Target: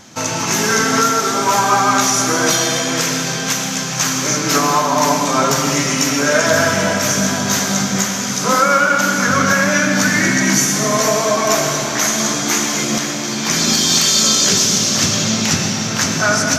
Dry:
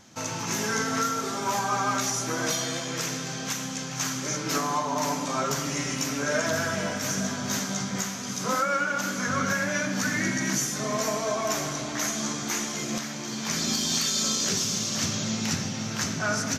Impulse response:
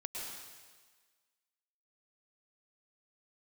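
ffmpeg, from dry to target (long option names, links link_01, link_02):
-filter_complex "[0:a]asplit=2[link_01][link_02];[1:a]atrim=start_sample=2205,lowshelf=frequency=120:gain=-9.5[link_03];[link_02][link_03]afir=irnorm=-1:irlink=0,volume=0.5dB[link_04];[link_01][link_04]amix=inputs=2:normalize=0,volume=7.5dB"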